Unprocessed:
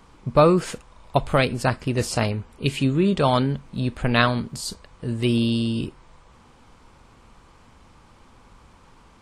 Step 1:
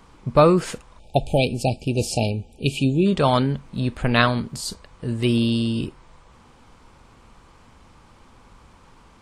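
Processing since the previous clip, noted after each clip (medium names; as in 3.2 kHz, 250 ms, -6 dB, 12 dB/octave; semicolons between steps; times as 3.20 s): spectral selection erased 0.99–3.06 s, 880–2300 Hz; trim +1 dB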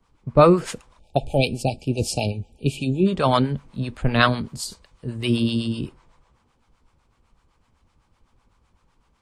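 harmonic tremolo 7.9 Hz, depth 70%, crossover 580 Hz; three bands expanded up and down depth 40%; trim +1.5 dB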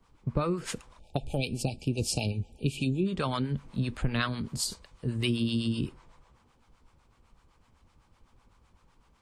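compression 6:1, threshold -24 dBFS, peak gain reduction 14.5 dB; dynamic bell 670 Hz, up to -7 dB, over -44 dBFS, Q 1.3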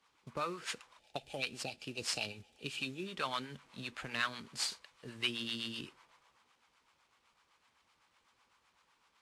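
CVSD coder 64 kbps; band-pass filter 2.5 kHz, Q 0.59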